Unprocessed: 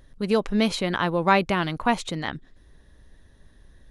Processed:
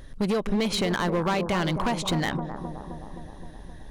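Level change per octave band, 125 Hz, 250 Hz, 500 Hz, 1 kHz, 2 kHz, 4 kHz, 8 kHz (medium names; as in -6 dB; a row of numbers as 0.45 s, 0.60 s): +2.0 dB, -1.0 dB, -2.0 dB, -4.5 dB, -4.0 dB, 0.0 dB, +3.0 dB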